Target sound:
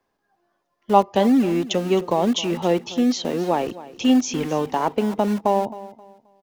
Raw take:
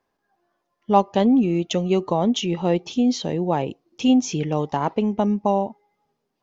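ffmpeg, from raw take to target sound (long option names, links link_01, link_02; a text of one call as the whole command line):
ffmpeg -i in.wav -filter_complex "[0:a]acrossover=split=170|880|1200[link_01][link_02][link_03][link_04];[link_01]aeval=exprs='(mod(66.8*val(0)+1,2)-1)/66.8':channel_layout=same[link_05];[link_05][link_02][link_03][link_04]amix=inputs=4:normalize=0,aecho=1:1:265|530|795:0.141|0.041|0.0119,volume=1.5dB" out.wav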